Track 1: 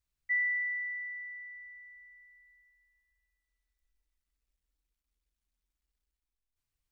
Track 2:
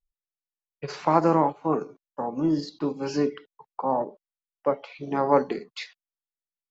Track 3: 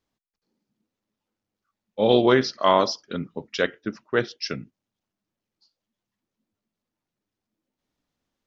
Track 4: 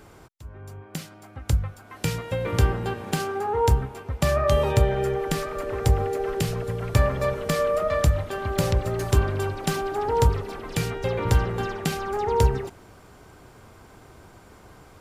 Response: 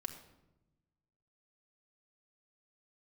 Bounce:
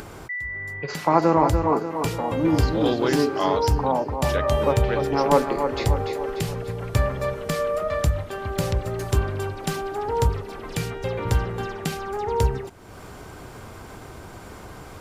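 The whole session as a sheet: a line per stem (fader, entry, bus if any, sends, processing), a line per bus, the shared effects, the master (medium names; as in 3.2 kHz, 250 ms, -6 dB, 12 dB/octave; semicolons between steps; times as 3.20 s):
-1.5 dB, 0.00 s, no send, no echo send, none
+2.0 dB, 0.00 s, no send, echo send -6.5 dB, none
-6.5 dB, 0.75 s, no send, no echo send, none
-1.5 dB, 0.00 s, no send, no echo send, none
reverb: none
echo: feedback delay 293 ms, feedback 52%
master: upward compressor, threshold -29 dBFS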